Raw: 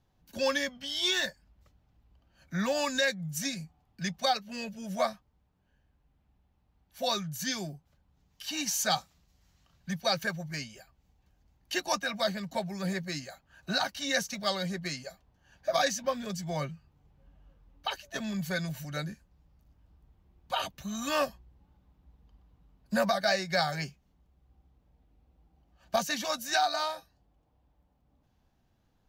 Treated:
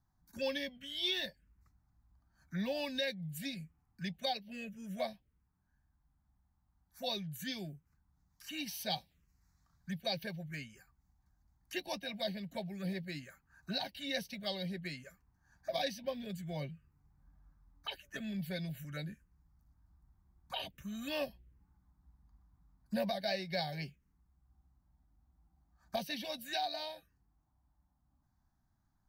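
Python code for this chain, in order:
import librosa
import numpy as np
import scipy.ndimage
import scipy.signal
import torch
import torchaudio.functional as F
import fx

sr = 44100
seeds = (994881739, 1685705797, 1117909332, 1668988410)

y = fx.env_phaser(x, sr, low_hz=480.0, high_hz=1300.0, full_db=-29.5)
y = y * 10.0 ** (-5.0 / 20.0)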